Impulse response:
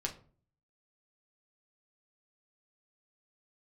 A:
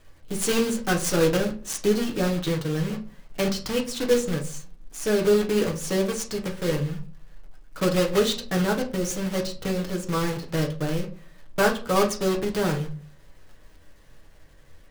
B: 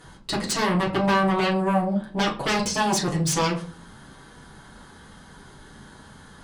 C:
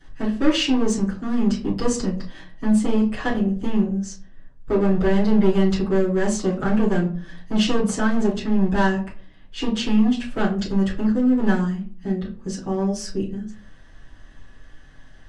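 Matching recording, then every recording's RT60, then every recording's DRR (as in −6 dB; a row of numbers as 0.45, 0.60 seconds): A; 0.45, 0.45, 0.45 seconds; 0.5, −5.5, −12.5 decibels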